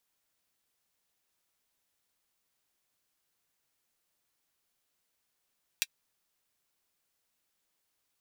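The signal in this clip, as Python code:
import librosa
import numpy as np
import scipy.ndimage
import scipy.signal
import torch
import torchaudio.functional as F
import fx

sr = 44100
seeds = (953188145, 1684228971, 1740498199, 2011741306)

y = fx.drum_hat(sr, length_s=0.24, from_hz=2500.0, decay_s=0.05)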